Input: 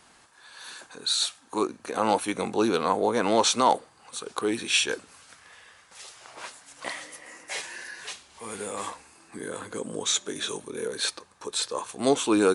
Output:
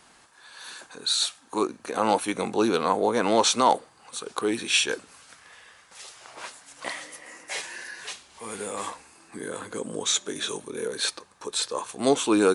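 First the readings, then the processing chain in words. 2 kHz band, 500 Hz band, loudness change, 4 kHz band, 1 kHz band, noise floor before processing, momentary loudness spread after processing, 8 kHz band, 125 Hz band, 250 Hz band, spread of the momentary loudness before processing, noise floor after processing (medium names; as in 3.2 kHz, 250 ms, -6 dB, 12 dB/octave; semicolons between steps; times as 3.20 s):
+1.0 dB, +1.0 dB, +1.0 dB, +1.0 dB, +1.0 dB, -57 dBFS, 19 LU, +1.0 dB, +0.5 dB, +1.0 dB, 19 LU, -56 dBFS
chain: peaking EQ 86 Hz -3 dB 0.77 oct; trim +1 dB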